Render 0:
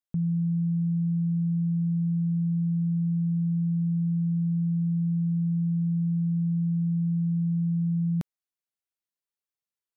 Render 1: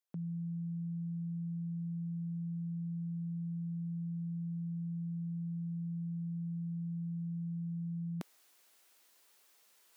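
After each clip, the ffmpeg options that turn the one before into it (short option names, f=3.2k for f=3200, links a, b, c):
-af "highpass=330,areverse,acompressor=mode=upward:threshold=-44dB:ratio=2.5,areverse,volume=-1dB"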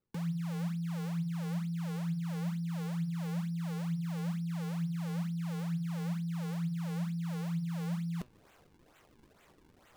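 -filter_complex "[0:a]acrossover=split=170[a][b];[b]acrusher=samples=40:mix=1:aa=0.000001:lfo=1:lforange=64:lforate=2.2[c];[a][c]amix=inputs=2:normalize=0,flanger=delay=7.7:depth=6.3:regen=78:speed=1.1:shape=sinusoidal,volume=8.5dB"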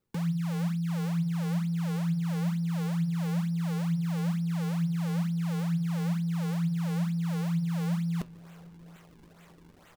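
-filter_complex "[0:a]asplit=2[a][b];[b]adelay=746,lowpass=f=2k:p=1,volume=-23dB,asplit=2[c][d];[d]adelay=746,lowpass=f=2k:p=1,volume=0.41,asplit=2[e][f];[f]adelay=746,lowpass=f=2k:p=1,volume=0.41[g];[a][c][e][g]amix=inputs=4:normalize=0,volume=5.5dB"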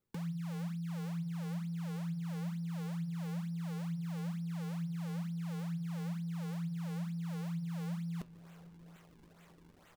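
-af "acompressor=threshold=-38dB:ratio=1.5,volume=-5.5dB"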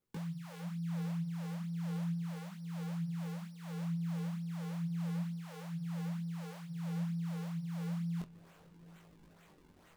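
-af "flanger=delay=19:depth=6.4:speed=0.33,volume=2.5dB"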